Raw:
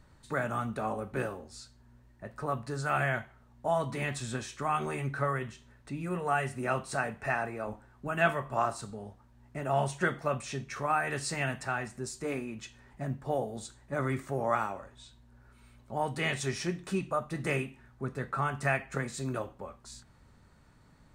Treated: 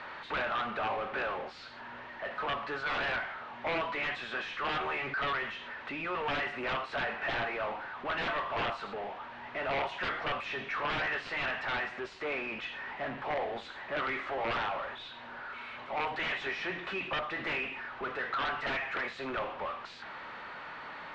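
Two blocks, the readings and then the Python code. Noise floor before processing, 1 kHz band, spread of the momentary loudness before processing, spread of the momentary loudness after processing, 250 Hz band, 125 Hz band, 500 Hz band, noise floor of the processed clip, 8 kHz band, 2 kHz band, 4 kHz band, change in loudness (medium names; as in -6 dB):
-60 dBFS, -1.0 dB, 14 LU, 10 LU, -6.5 dB, -14.0 dB, -3.0 dB, -47 dBFS, under -15 dB, +2.5 dB, +6.0 dB, -1.5 dB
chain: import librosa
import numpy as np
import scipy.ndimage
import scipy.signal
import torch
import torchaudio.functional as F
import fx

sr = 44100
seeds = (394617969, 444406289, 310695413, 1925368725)

y = scipy.signal.sosfilt(scipy.signal.butter(2, 790.0, 'highpass', fs=sr, output='sos'), x)
y = (np.mod(10.0 ** (27.5 / 20.0) * y + 1.0, 2.0) - 1.0) / 10.0 ** (27.5 / 20.0)
y = fx.power_curve(y, sr, exponent=0.35)
y = scipy.signal.sosfilt(scipy.signal.butter(4, 3100.0, 'lowpass', fs=sr, output='sos'), y)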